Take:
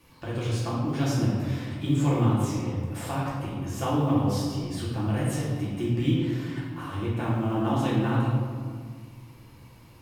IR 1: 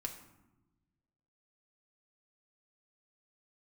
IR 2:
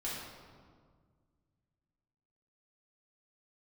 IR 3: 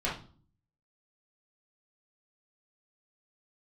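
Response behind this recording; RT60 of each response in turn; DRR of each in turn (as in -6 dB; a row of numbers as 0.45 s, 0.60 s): 2; 1.1 s, 1.8 s, no single decay rate; 2.5 dB, -7.5 dB, -7.0 dB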